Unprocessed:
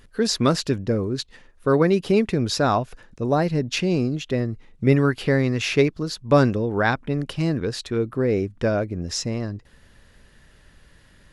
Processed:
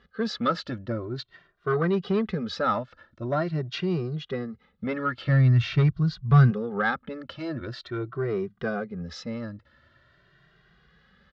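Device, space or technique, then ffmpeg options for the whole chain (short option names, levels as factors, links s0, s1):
barber-pole flanger into a guitar amplifier: -filter_complex "[0:a]asplit=2[s0][s1];[s1]adelay=2,afreqshift=0.45[s2];[s0][s2]amix=inputs=2:normalize=1,asoftclip=type=tanh:threshold=0.188,highpass=82,equalizer=f=100:t=q:w=4:g=-8,equalizer=f=280:t=q:w=4:g=-10,equalizer=f=470:t=q:w=4:g=-4,equalizer=f=920:t=q:w=4:g=-6,equalizer=f=1300:t=q:w=4:g=7,equalizer=f=2500:t=q:w=4:g=-8,lowpass=f=4000:w=0.5412,lowpass=f=4000:w=1.3066,asplit=3[s3][s4][s5];[s3]afade=t=out:st=5.27:d=0.02[s6];[s4]asubboost=boost=11:cutoff=120,afade=t=in:st=5.27:d=0.02,afade=t=out:st=6.5:d=0.02[s7];[s5]afade=t=in:st=6.5:d=0.02[s8];[s6][s7][s8]amix=inputs=3:normalize=0"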